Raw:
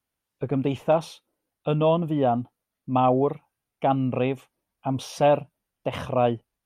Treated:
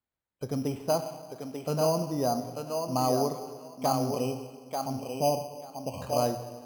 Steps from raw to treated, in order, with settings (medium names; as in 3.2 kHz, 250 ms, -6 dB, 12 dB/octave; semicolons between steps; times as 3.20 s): 4.04–6.02 s: Chebyshev band-stop 1.1–2.4 kHz, order 5; on a send: thinning echo 890 ms, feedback 17%, high-pass 420 Hz, level -3 dB; on the sum: plate-style reverb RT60 1.6 s, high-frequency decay 0.95×, DRR 8 dB; careless resampling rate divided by 8×, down filtered, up hold; trim -6.5 dB